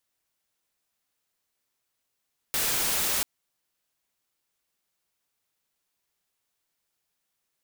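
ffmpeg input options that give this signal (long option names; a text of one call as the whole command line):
ffmpeg -f lavfi -i "anoisesrc=color=white:amplitude=0.0819:duration=0.69:sample_rate=44100:seed=1" out.wav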